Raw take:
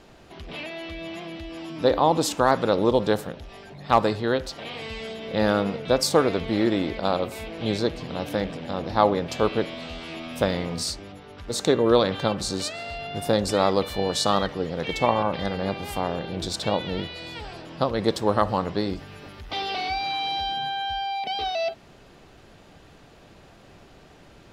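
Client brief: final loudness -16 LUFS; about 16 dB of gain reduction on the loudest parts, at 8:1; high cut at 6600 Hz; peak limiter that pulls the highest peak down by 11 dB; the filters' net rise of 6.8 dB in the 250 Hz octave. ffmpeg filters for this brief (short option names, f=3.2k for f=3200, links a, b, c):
-af "lowpass=6.6k,equalizer=f=250:t=o:g=9,acompressor=threshold=-28dB:ratio=8,volume=18.5dB,alimiter=limit=-6dB:level=0:latency=1"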